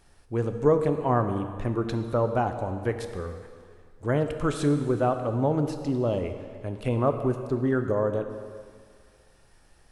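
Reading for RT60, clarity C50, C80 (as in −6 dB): 2.0 s, 8.5 dB, 9.5 dB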